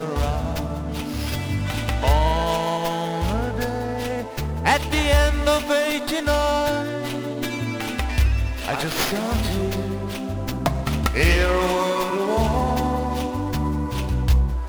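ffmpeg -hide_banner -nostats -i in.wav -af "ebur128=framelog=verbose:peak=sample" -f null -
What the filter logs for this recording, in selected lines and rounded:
Integrated loudness:
  I:         -22.8 LUFS
  Threshold: -32.8 LUFS
Loudness range:
  LRA:         3.0 LU
  Threshold: -42.6 LUFS
  LRA low:   -24.2 LUFS
  LRA high:  -21.2 LUFS
Sample peak:
  Peak:       -3.3 dBFS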